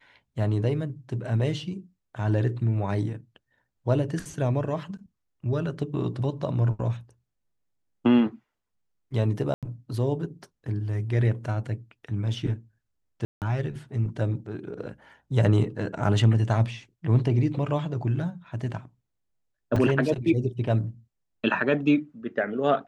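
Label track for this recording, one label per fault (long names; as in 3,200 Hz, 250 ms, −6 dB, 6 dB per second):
9.540000	9.630000	drop-out 87 ms
13.250000	13.420000	drop-out 168 ms
19.760000	19.760000	drop-out 3.6 ms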